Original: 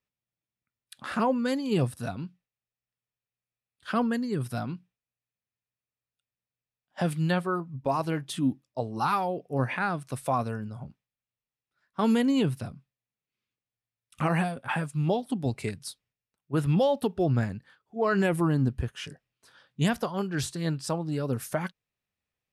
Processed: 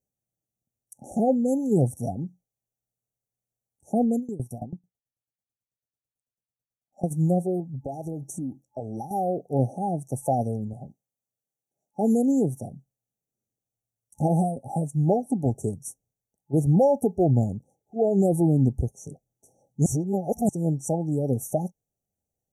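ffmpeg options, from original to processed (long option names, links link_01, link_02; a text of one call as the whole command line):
ffmpeg -i in.wav -filter_complex "[0:a]asplit=3[link_01][link_02][link_03];[link_01]afade=type=out:start_time=4.18:duration=0.02[link_04];[link_02]aeval=exprs='val(0)*pow(10,-21*if(lt(mod(9.1*n/s,1),2*abs(9.1)/1000),1-mod(9.1*n/s,1)/(2*abs(9.1)/1000),(mod(9.1*n/s,1)-2*abs(9.1)/1000)/(1-2*abs(9.1)/1000))/20)':channel_layout=same,afade=type=in:start_time=4.18:duration=0.02,afade=type=out:start_time=7.1:duration=0.02[link_05];[link_03]afade=type=in:start_time=7.1:duration=0.02[link_06];[link_04][link_05][link_06]amix=inputs=3:normalize=0,asettb=1/sr,asplit=3[link_07][link_08][link_09];[link_07]atrim=end=7.604[link_10];[link_08]atrim=start=7.6:end=9.11,asetpts=PTS-STARTPTS,afade=type=in:duration=0.004:curve=qsin,afade=type=out:start_time=1.506:duration=0.004:curve=qsin,acompressor=threshold=-33dB:ratio=6:attack=3.2:release=140:knee=1:detection=peak[link_11];[link_09]atrim=start=9.106[link_12];[link_10][link_11]acrossfade=duration=0.004:curve1=hsin:curve2=qsin[link_13];[link_13][link_12]acrossfade=duration=0.004:curve1=qsin:curve2=hsin,asettb=1/sr,asplit=3[link_14][link_15][link_16];[link_14]atrim=end=10.734[link_17];[link_15]atrim=start=10.73:end=12.72,asetpts=PTS-STARTPTS,afade=type=in:duration=0.004:curve=qsin,afade=type=out:start_time=1.986:duration=0.004:curve=qsin,highpass=frequency=210:poles=1[link_18];[link_16]atrim=start=12.716[link_19];[link_17][link_18]acrossfade=duration=0.004:curve1=hsin:curve2=qsin[link_20];[link_20][link_19]acrossfade=duration=0.004:curve1=qsin:curve2=hsin,asplit=3[link_21][link_22][link_23];[link_21]atrim=end=19.862[link_24];[link_22]atrim=start=19.858:end=20.492,asetpts=PTS-STARTPTS,areverse[link_25];[link_23]atrim=start=20.488[link_26];[link_24][link_25]acrossfade=duration=0.004:curve1=hsin:curve2=hsin[link_27];[link_27][link_26]acrossfade=duration=0.004:curve1=hsin:curve2=hsin,afftfilt=real='re*(1-between(b*sr/4096,860,5600))':imag='im*(1-between(b*sr/4096,860,5600))':win_size=4096:overlap=0.75,volume=4.5dB" out.wav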